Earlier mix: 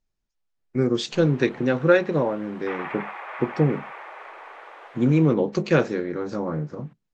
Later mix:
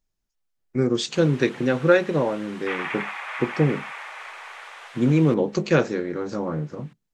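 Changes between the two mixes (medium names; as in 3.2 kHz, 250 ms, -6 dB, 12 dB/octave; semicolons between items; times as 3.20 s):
background: add frequency weighting ITU-R 468; master: remove distance through air 62 m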